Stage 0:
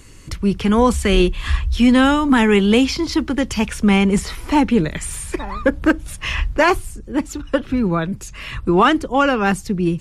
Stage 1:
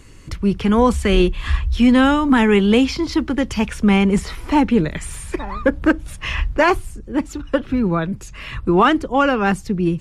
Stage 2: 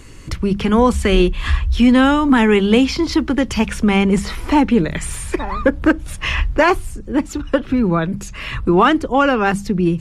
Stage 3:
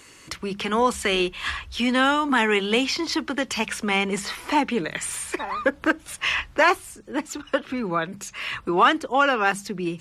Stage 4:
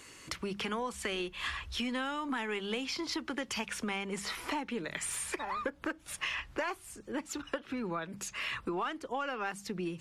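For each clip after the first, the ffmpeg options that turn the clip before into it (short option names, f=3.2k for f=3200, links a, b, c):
-af "highshelf=f=4.4k:g=-6.5"
-filter_complex "[0:a]asplit=2[a][b];[b]acompressor=threshold=-21dB:ratio=6,volume=0dB[c];[a][c]amix=inputs=2:normalize=0,bandreject=f=50:t=h:w=6,bandreject=f=100:t=h:w=6,bandreject=f=150:t=h:w=6,bandreject=f=200:t=h:w=6,volume=-1dB"
-af "highpass=f=870:p=1,volume=-1dB"
-af "aeval=exprs='0.531*(cos(1*acos(clip(val(0)/0.531,-1,1)))-cos(1*PI/2))+0.0075*(cos(6*acos(clip(val(0)/0.531,-1,1)))-cos(6*PI/2))':c=same,acompressor=threshold=-29dB:ratio=6,volume=-4dB"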